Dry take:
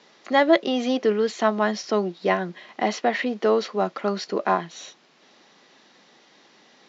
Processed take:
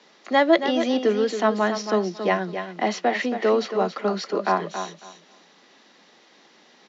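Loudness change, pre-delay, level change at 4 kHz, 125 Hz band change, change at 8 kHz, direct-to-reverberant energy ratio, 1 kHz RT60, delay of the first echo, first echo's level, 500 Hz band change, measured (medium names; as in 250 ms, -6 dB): +0.5 dB, no reverb, +0.5 dB, +0.5 dB, no reading, no reverb, no reverb, 275 ms, -9.0 dB, +0.5 dB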